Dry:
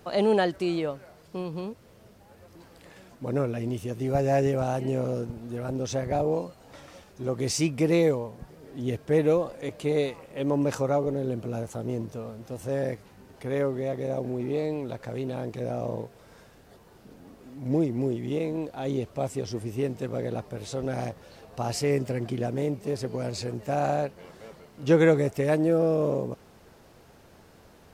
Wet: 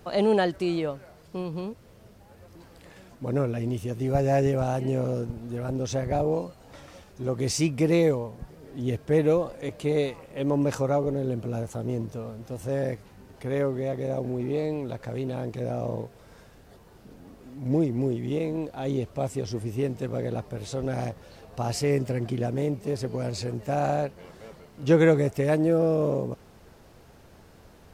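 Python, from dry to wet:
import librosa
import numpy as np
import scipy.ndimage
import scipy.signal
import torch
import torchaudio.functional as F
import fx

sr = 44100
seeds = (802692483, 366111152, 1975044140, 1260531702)

y = fx.low_shelf(x, sr, hz=100.0, db=7.0)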